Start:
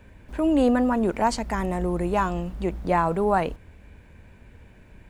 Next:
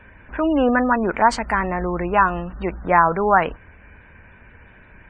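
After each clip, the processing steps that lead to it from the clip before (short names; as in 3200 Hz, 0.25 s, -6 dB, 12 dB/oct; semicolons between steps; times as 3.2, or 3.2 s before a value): bell 1500 Hz +12.5 dB 1.8 oct; spectral gate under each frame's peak -30 dB strong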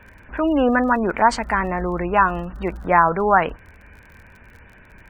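crackle 43/s -38 dBFS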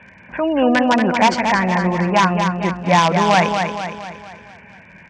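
in parallel at -3 dB: wrapped overs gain 8 dB; on the sum: speaker cabinet 140–6100 Hz, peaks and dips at 180 Hz +6 dB, 300 Hz -6 dB, 430 Hz -7 dB, 1300 Hz -9 dB, 2300 Hz +4 dB, 4000 Hz -5 dB; feedback echo 0.232 s, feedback 50%, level -6 dB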